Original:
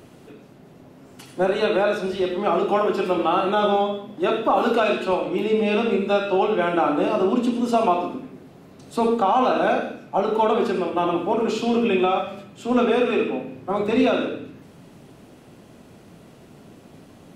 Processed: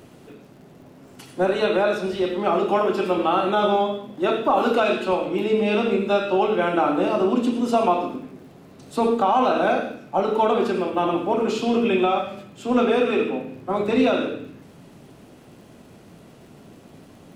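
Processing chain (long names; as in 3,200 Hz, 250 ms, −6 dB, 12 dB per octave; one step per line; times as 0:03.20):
surface crackle 93 per second −48 dBFS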